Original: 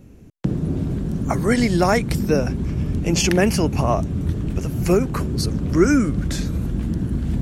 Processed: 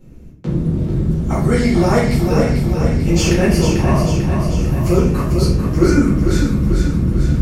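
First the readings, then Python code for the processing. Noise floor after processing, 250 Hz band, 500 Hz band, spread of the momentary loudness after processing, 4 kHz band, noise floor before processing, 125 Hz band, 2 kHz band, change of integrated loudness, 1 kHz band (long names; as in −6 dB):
−36 dBFS, +4.5 dB, +3.5 dB, 5 LU, +2.0 dB, −43 dBFS, +6.5 dB, +1.5 dB, +5.0 dB, +2.0 dB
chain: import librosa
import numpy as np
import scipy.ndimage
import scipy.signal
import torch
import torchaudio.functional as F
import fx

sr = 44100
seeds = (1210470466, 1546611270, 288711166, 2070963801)

p1 = np.clip(10.0 ** (19.0 / 20.0) * x, -1.0, 1.0) / 10.0 ** (19.0 / 20.0)
p2 = x + (p1 * librosa.db_to_amplitude(-9.0))
p3 = fx.echo_feedback(p2, sr, ms=444, feedback_pct=60, wet_db=-6.0)
p4 = fx.room_shoebox(p3, sr, seeds[0], volume_m3=90.0, walls='mixed', distance_m=2.1)
y = p4 * librosa.db_to_amplitude(-10.0)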